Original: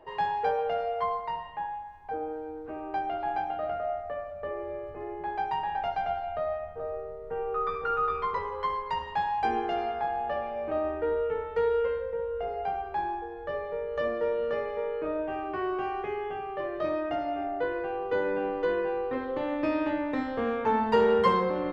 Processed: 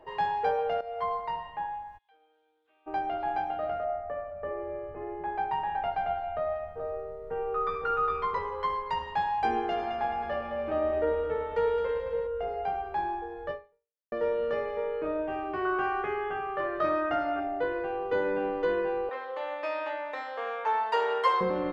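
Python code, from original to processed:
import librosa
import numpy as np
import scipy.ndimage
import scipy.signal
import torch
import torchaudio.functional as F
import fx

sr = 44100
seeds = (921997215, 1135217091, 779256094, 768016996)

y = fx.bandpass_q(x, sr, hz=3400.0, q=7.1, at=(1.97, 2.86), fade=0.02)
y = fx.lowpass(y, sr, hz=fx.line((3.84, 2000.0), (6.54, 3500.0)), slope=12, at=(3.84, 6.54), fade=0.02)
y = fx.echo_heads(y, sr, ms=108, heads='first and second', feedback_pct=57, wet_db=-9, at=(9.61, 12.27))
y = fx.peak_eq(y, sr, hz=1400.0, db=12.0, octaves=0.61, at=(15.65, 17.4))
y = fx.highpass(y, sr, hz=560.0, slope=24, at=(19.09, 21.41))
y = fx.edit(y, sr, fx.fade_in_from(start_s=0.81, length_s=0.43, curve='qsin', floor_db=-13.0),
    fx.fade_out_span(start_s=13.51, length_s=0.61, curve='exp'), tone=tone)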